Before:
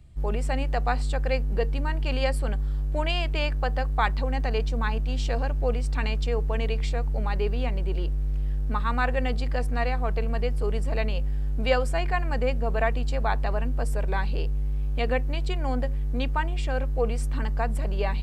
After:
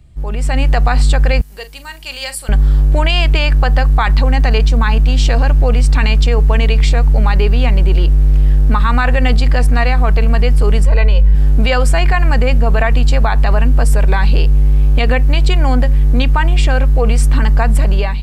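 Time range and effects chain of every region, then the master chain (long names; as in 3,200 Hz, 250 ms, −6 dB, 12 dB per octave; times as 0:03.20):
0:01.41–0:02.49: first-order pre-emphasis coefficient 0.97 + double-tracking delay 41 ms −13 dB
0:10.85–0:11.35: high-shelf EQ 3,500 Hz −8.5 dB + comb filter 2 ms, depth 75%
whole clip: dynamic equaliser 470 Hz, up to −6 dB, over −39 dBFS, Q 0.77; brickwall limiter −20 dBFS; automatic gain control gain up to 10.5 dB; level +6.5 dB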